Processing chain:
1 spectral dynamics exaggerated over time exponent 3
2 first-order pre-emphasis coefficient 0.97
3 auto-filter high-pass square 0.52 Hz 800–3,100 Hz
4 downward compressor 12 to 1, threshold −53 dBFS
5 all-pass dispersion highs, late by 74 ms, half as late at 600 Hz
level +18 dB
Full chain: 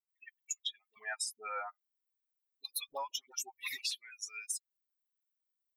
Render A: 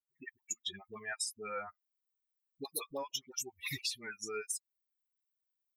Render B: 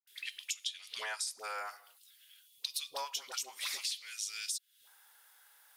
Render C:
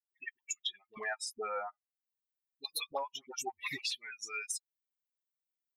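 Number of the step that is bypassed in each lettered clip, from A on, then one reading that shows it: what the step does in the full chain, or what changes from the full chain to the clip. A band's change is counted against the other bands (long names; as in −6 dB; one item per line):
3, 250 Hz band +20.5 dB
1, change in crest factor +2.0 dB
2, 250 Hz band +13.5 dB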